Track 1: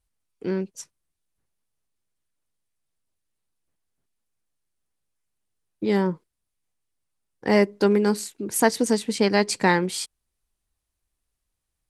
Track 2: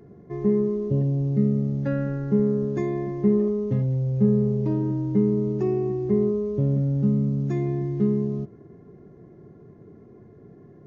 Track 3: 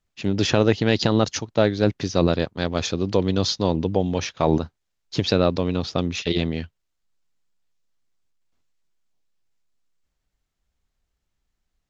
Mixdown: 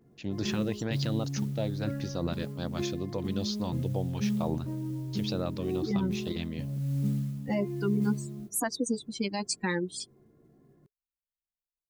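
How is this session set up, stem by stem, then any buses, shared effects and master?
+1.0 dB, 0.00 s, bus A, no send, spectral dynamics exaggerated over time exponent 3
−9.0 dB, 0.00 s, no bus, no send, multi-voice chorus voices 6, 0.26 Hz, delay 18 ms, depth 4.7 ms; noise that follows the level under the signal 27 dB
−11.0 dB, 0.00 s, bus A, no send, noise gate with hold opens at −36 dBFS
bus A: 0.0 dB, auto-filter notch saw up 2.2 Hz 370–3,500 Hz; brickwall limiter −19.5 dBFS, peak gain reduction 9 dB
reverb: not used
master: notch filter 420 Hz, Q 12

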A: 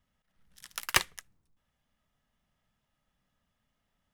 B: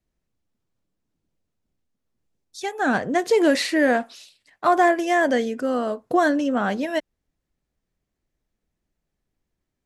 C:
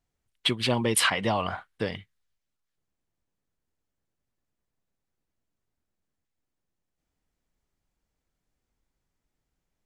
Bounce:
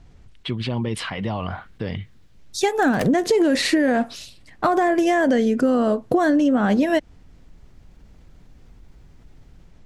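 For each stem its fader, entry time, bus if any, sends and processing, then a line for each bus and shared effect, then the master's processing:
−5.0 dB, 2.05 s, no send, automatic ducking −9 dB, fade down 0.30 s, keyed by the third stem
−0.5 dB, 0.00 s, no send, automatic gain control gain up to 13.5 dB; brickwall limiter −8 dBFS, peak gain reduction 7 dB; pitch vibrato 0.5 Hz 31 cents
−4.5 dB, 0.00 s, no send, low-pass filter 5,300 Hz 12 dB per octave; brickwall limiter −16.5 dBFS, peak gain reduction 6 dB; envelope flattener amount 50%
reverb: not used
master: low-shelf EQ 290 Hz +11.5 dB; downward compressor 6 to 1, threshold −15 dBFS, peak gain reduction 7.5 dB

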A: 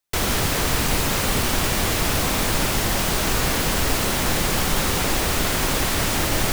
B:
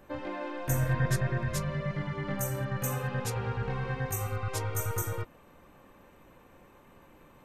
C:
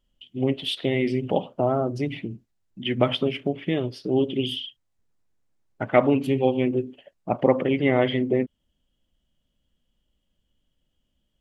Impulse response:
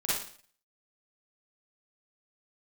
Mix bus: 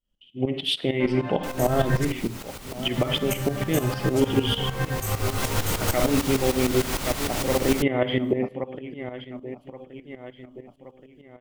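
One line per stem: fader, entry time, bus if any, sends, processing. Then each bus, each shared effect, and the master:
0:04.77 −15 dB → 0:05.45 −3.5 dB, 1.30 s, no bus, no send, no echo send, notch filter 1,700 Hz, Q 23
−6.0 dB, 0.90 s, muted 0:02.05–0:02.96, bus A, send −7.5 dB, no echo send, no processing
−7.5 dB, 0.00 s, bus A, send −8 dB, echo send −3 dB, no processing
bus A: 0.0 dB, automatic gain control gain up to 14 dB; brickwall limiter −11 dBFS, peak gain reduction 9 dB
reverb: on, RT60 0.50 s, pre-delay 38 ms
echo: repeating echo 1,124 ms, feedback 44%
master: shaped tremolo saw up 6.6 Hz, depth 75%

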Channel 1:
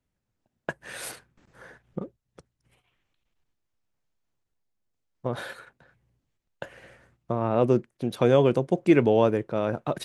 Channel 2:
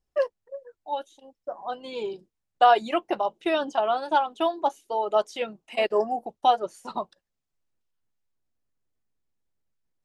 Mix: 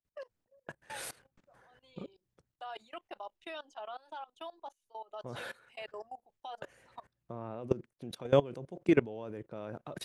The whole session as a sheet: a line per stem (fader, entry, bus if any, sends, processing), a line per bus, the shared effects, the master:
−3.0 dB, 0.00 s, no send, no processing
−11.0 dB, 0.00 s, no send, high-pass filter 990 Hz 6 dB per octave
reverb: not used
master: output level in coarse steps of 21 dB

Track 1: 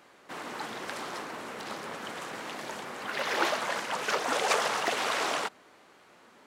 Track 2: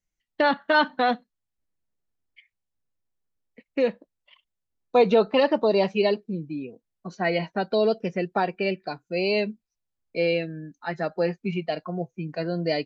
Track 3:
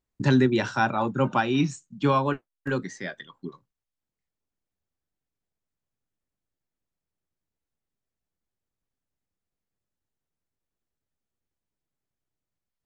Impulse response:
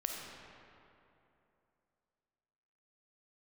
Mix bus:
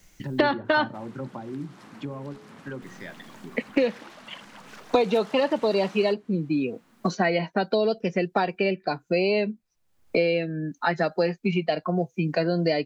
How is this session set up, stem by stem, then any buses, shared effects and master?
−6.5 dB, 0.65 s, bus A, no send, phase distortion by the signal itself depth 0.091 ms; low shelf with overshoot 310 Hz +10 dB, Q 1.5; downward compressor 6 to 1, threshold −37 dBFS, peak gain reduction 13.5 dB
0.0 dB, 0.00 s, muted 0:00.97–0:02.82, no bus, no send, multiband upward and downward compressor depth 100%
−4.0 dB, 0.00 s, bus A, no send, treble cut that deepens with the level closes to 550 Hz, closed at −20.5 dBFS
bus A: 0.0 dB, hum removal 60.93 Hz, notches 8; downward compressor 2 to 1, threshold −36 dBFS, peak gain reduction 9 dB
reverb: not used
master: no processing

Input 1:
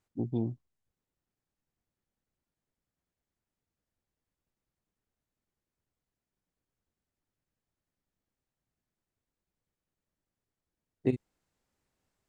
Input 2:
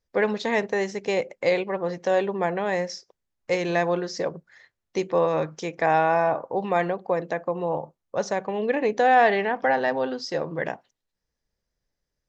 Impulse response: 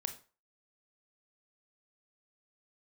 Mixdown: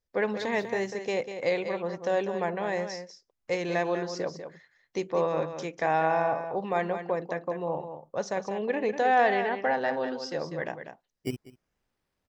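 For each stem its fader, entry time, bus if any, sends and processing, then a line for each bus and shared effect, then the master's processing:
0.0 dB, 0.20 s, no send, echo send −23.5 dB, sample-and-hold swept by an LFO 14×, swing 100% 0.4 Hz; automatic ducking −24 dB, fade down 0.30 s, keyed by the second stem
−5.0 dB, 0.00 s, no send, echo send −9 dB, no processing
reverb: not used
echo: single-tap delay 195 ms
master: no processing

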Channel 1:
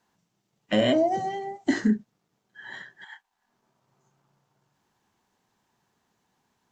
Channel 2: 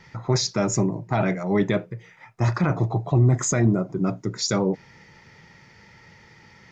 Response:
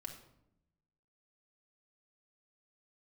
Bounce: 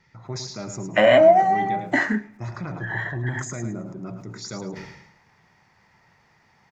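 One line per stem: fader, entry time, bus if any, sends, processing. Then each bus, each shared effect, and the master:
−3.5 dB, 0.25 s, send −12 dB, echo send −22.5 dB, flat-topped bell 1,200 Hz +14 dB 2.6 octaves
−11.5 dB, 0.00 s, no send, echo send −8 dB, level that may fall only so fast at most 69 dB per second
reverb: on, RT60 0.80 s, pre-delay 3 ms
echo: repeating echo 107 ms, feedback 27%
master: parametric band 480 Hz −2.5 dB 0.27 octaves; notch filter 3,100 Hz, Q 23

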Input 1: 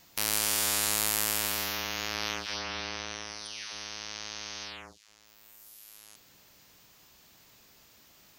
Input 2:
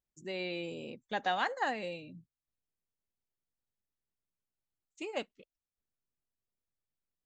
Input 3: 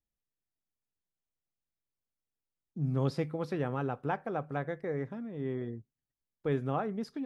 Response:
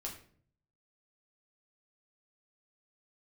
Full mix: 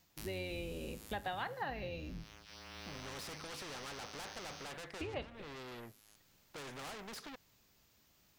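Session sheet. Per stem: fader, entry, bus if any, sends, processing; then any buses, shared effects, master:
−12.0 dB, 0.00 s, no send, noise that follows the level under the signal 18 dB; low-shelf EQ 180 Hz +9 dB; automatic ducking −14 dB, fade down 0.40 s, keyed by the second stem
+2.0 dB, 0.00 s, send −8 dB, sub-octave generator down 2 octaves, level +1 dB; Butterworth low-pass 4,500 Hz
−15.5 dB, 0.10 s, no send, mid-hump overdrive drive 34 dB, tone 3,400 Hz, clips at −17.5 dBFS; every bin compressed towards the loudest bin 2 to 1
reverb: on, RT60 0.50 s, pre-delay 6 ms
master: downward compressor 3 to 1, threshold −41 dBFS, peak gain reduction 13 dB

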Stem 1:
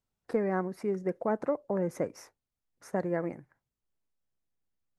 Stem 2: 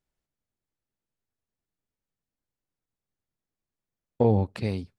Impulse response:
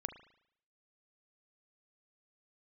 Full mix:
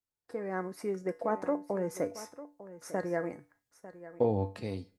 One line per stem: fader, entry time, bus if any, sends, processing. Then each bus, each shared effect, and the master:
−4.0 dB, 0.00 s, no send, echo send −15.5 dB, no processing
−12.5 dB, 0.00 s, send −13.5 dB, no echo send, Bessel high-pass filter 150 Hz; tilt shelving filter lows +4 dB, about 1,400 Hz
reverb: on, RT60 0.70 s, pre-delay 36 ms
echo: single-tap delay 899 ms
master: bass and treble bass −4 dB, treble +6 dB; automatic gain control gain up to 11.5 dB; tuned comb filter 97 Hz, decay 0.31 s, harmonics odd, mix 70%

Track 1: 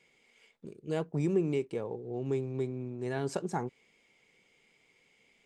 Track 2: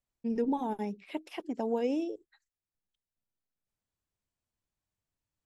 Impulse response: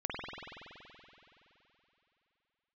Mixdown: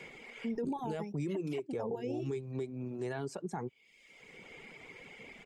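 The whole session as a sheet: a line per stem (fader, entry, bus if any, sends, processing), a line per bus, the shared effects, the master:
−0.5 dB, 0.00 s, no send, multiband upward and downward compressor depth 70%
+1.5 dB, 0.20 s, no send, automatic ducking −7 dB, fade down 1.85 s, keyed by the first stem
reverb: not used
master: reverb reduction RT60 0.89 s; brickwall limiter −28.5 dBFS, peak gain reduction 8.5 dB

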